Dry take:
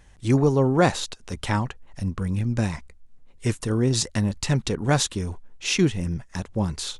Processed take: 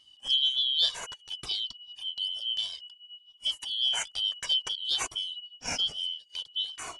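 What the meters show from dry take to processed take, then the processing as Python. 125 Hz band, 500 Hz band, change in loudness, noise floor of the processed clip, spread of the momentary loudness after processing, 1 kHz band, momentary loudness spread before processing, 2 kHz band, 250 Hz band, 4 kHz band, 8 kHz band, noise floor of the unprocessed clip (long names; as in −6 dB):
below −30 dB, −26.0 dB, −4.0 dB, −60 dBFS, 13 LU, −14.5 dB, 12 LU, −10.0 dB, below −30 dB, +8.0 dB, −8.0 dB, −52 dBFS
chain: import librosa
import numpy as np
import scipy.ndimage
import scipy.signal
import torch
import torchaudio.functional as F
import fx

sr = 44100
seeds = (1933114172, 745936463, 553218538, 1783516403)

y = fx.band_shuffle(x, sr, order='3412')
y = fx.comb_cascade(y, sr, direction='falling', hz=0.57)
y = y * librosa.db_to_amplitude(-3.5)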